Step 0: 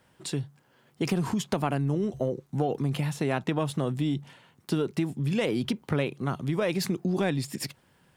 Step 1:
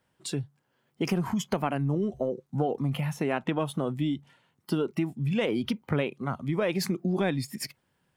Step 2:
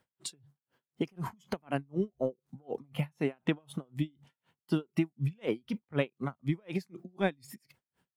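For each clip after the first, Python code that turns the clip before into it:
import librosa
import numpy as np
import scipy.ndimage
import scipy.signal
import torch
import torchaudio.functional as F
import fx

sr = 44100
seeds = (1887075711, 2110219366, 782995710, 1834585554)

y1 = fx.noise_reduce_blind(x, sr, reduce_db=10)
y2 = y1 * 10.0 ** (-39 * (0.5 - 0.5 * np.cos(2.0 * np.pi * 4.0 * np.arange(len(y1)) / sr)) / 20.0)
y2 = y2 * 10.0 ** (1.0 / 20.0)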